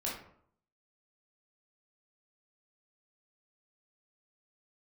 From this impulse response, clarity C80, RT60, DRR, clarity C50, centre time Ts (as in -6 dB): 8.5 dB, 0.65 s, -5.5 dB, 3.5 dB, 43 ms